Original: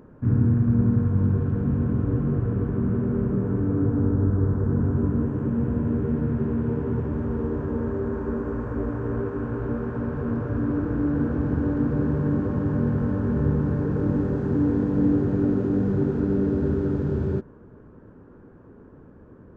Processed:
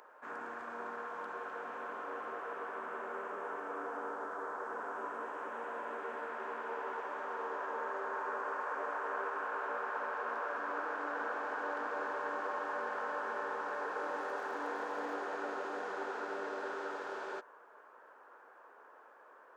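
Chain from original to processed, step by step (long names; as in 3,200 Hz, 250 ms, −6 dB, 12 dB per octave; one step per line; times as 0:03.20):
high-pass filter 720 Hz 24 dB per octave
0:14.08–0:15.14: surface crackle 83 per second −56 dBFS
level +4.5 dB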